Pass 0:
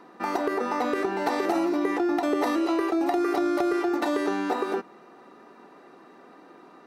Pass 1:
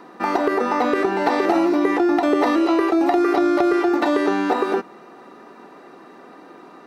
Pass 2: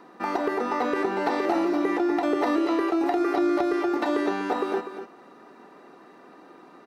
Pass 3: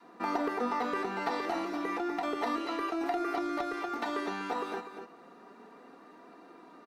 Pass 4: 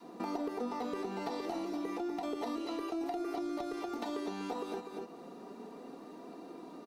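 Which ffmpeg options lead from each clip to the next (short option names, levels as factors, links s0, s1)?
-filter_complex "[0:a]acrossover=split=5000[s0][s1];[s1]acompressor=threshold=0.00141:ratio=4:attack=1:release=60[s2];[s0][s2]amix=inputs=2:normalize=0,volume=2.24"
-af "aecho=1:1:247:0.316,volume=0.473"
-af "adynamicequalizer=threshold=0.0141:dfrequency=390:dqfactor=0.74:tfrequency=390:tqfactor=0.74:attack=5:release=100:ratio=0.375:range=3.5:mode=cutabove:tftype=bell,aecho=1:1:4.3:0.33,flanger=delay=2.9:depth=3.4:regen=71:speed=0.31:shape=sinusoidal"
-af "equalizer=f=1600:t=o:w=1.6:g=-13.5,acompressor=threshold=0.00447:ratio=2.5,volume=2.51"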